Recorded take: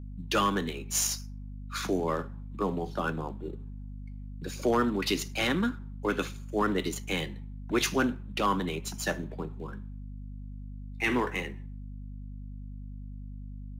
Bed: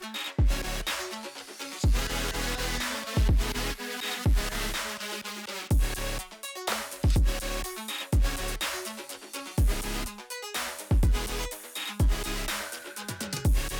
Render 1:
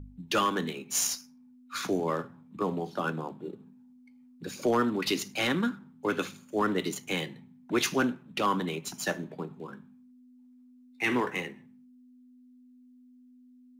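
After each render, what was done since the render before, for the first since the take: de-hum 50 Hz, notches 4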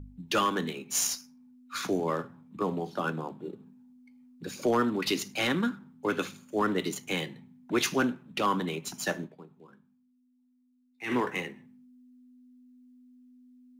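9.25–11.12 s: dip -12.5 dB, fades 0.38 s exponential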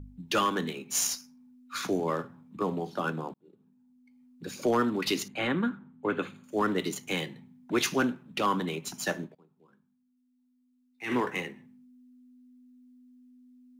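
3.34–4.56 s: fade in; 5.28–6.44 s: boxcar filter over 8 samples; 9.35–11.28 s: fade in equal-power, from -14.5 dB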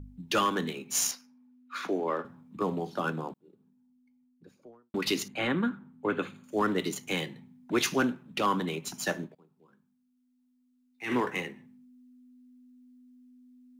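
1.11–2.25 s: three-band isolator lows -21 dB, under 220 Hz, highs -13 dB, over 3.4 kHz; 3.25–4.94 s: studio fade out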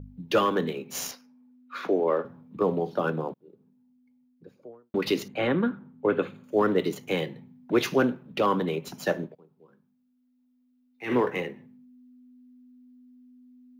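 ten-band graphic EQ 125 Hz +5 dB, 500 Hz +9 dB, 8 kHz -10 dB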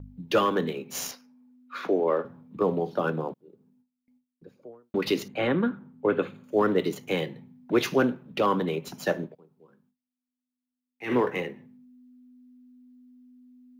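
gate with hold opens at -58 dBFS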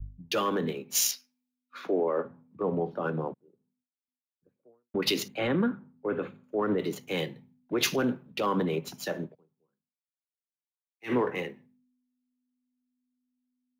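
peak limiter -20.5 dBFS, peak gain reduction 9.5 dB; three bands expanded up and down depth 100%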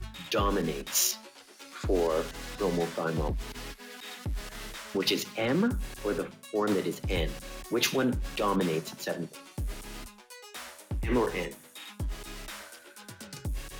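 add bed -10 dB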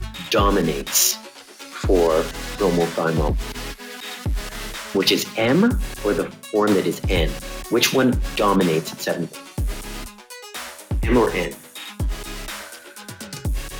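trim +10 dB; peak limiter -3 dBFS, peak gain reduction 2.5 dB

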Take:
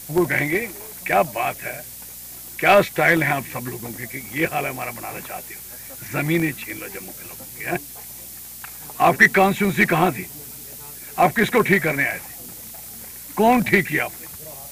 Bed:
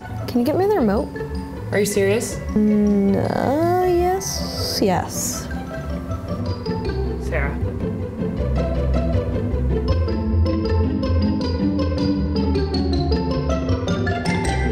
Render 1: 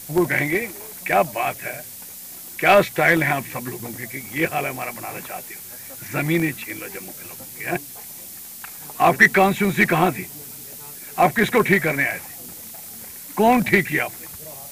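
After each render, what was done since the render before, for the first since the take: de-hum 60 Hz, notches 2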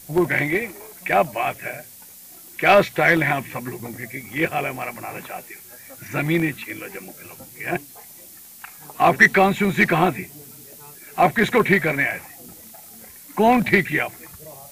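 noise print and reduce 6 dB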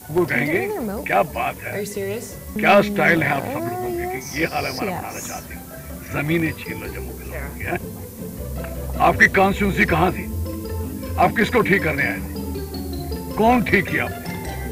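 add bed -8.5 dB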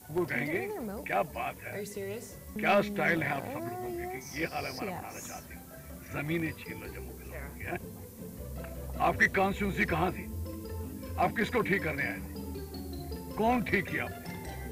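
trim -12 dB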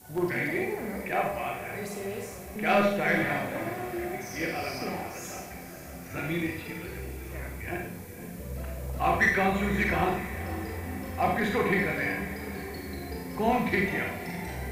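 echo that smears into a reverb 508 ms, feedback 62%, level -14 dB; Schroeder reverb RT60 0.58 s, combs from 31 ms, DRR 0.5 dB

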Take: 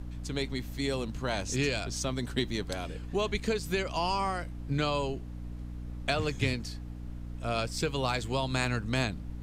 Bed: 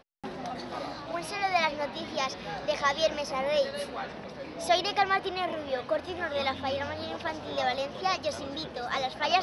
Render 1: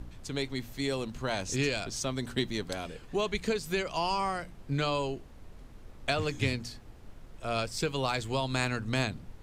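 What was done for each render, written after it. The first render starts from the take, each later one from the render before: de-hum 60 Hz, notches 5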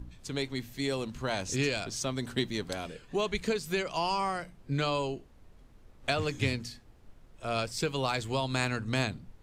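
noise print and reduce 7 dB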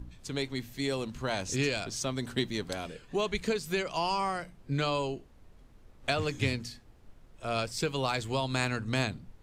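no audible change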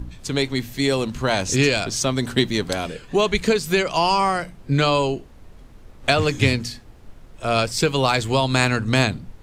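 trim +11.5 dB

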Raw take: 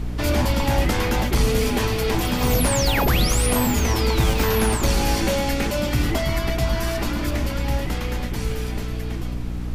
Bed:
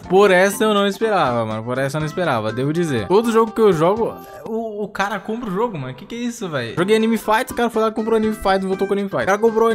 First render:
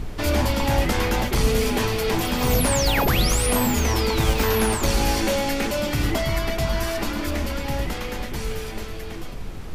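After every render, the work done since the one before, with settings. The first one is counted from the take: hum notches 60/120/180/240/300/360 Hz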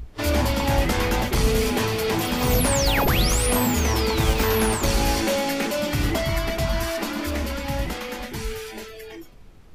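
noise print and reduce 15 dB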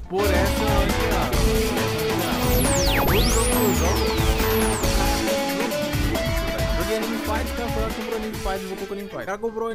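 add bed -11.5 dB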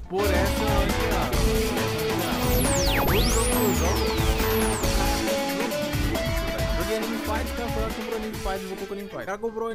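trim -2.5 dB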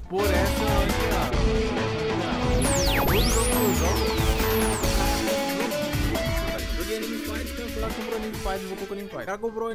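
1.30–2.62 s: distance through air 110 m; 4.22–5.52 s: short-mantissa float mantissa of 4-bit; 6.58–7.83 s: static phaser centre 330 Hz, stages 4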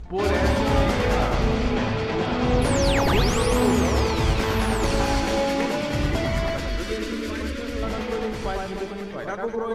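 distance through air 59 m; echo whose repeats swap between lows and highs 101 ms, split 1.8 kHz, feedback 64%, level -2 dB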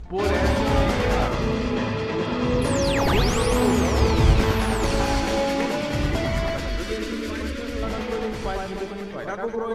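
1.28–3.01 s: comb of notches 750 Hz; 4.01–4.52 s: bass shelf 340 Hz +6 dB

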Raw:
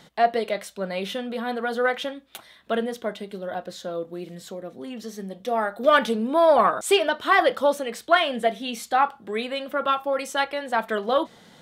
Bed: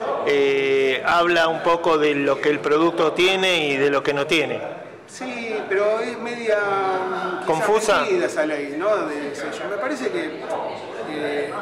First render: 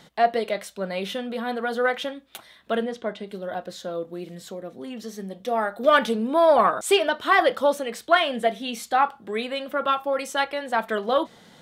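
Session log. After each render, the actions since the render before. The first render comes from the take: 2.85–3.27 s: distance through air 71 m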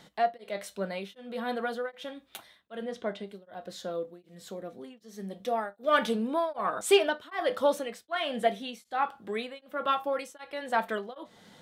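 feedback comb 100 Hz, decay 0.19 s, harmonics all, mix 50%; tremolo of two beating tones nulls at 1.3 Hz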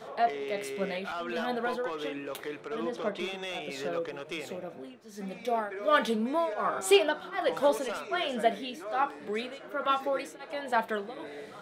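add bed -19 dB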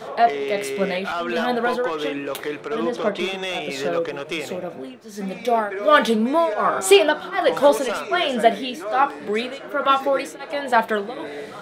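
trim +10 dB; peak limiter -2 dBFS, peak gain reduction 2 dB

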